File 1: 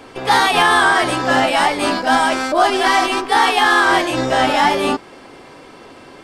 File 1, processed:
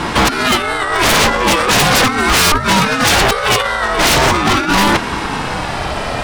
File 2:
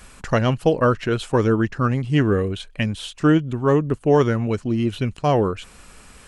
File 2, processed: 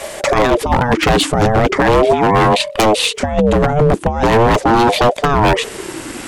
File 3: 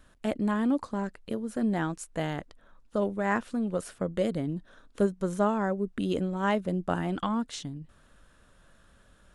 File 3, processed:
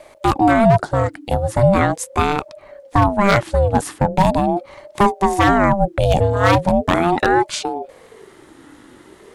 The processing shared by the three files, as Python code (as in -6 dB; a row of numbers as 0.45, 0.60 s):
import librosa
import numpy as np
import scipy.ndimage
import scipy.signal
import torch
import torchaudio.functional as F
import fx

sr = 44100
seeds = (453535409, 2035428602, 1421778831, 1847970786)

y = fx.over_compress(x, sr, threshold_db=-21.0, ratio=-0.5)
y = 10.0 ** (-20.0 / 20.0) * (np.abs((y / 10.0 ** (-20.0 / 20.0) + 3.0) % 4.0 - 2.0) - 1.0)
y = fx.ring_lfo(y, sr, carrier_hz=450.0, swing_pct=35, hz=0.4)
y = y * 10.0 ** (-3 / 20.0) / np.max(np.abs(y))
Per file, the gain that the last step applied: +17.0, +17.0, +17.0 dB